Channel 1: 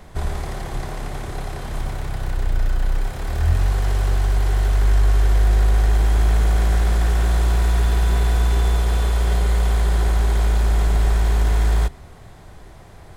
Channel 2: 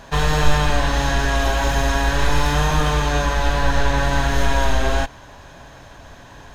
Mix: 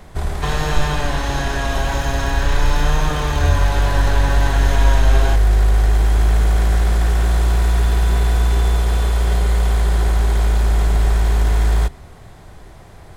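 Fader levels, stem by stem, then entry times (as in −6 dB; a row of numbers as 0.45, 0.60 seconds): +2.0, −2.5 decibels; 0.00, 0.30 seconds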